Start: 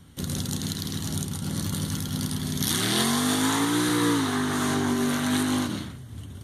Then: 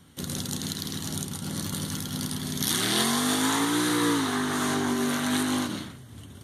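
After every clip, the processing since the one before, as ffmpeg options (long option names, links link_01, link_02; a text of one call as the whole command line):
ffmpeg -i in.wav -af "lowshelf=frequency=110:gain=-12" out.wav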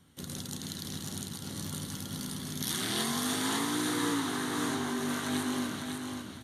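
ffmpeg -i in.wav -af "aecho=1:1:551|1102|1653:0.562|0.146|0.038,volume=-7.5dB" out.wav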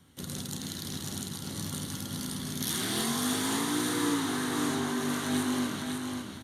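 ffmpeg -i in.wav -filter_complex "[0:a]acrossover=split=550|5700[link_01][link_02][link_03];[link_02]asoftclip=type=hard:threshold=-35dB[link_04];[link_01][link_04][link_03]amix=inputs=3:normalize=0,asplit=2[link_05][link_06];[link_06]adelay=48,volume=-12dB[link_07];[link_05][link_07]amix=inputs=2:normalize=0,volume=2dB" out.wav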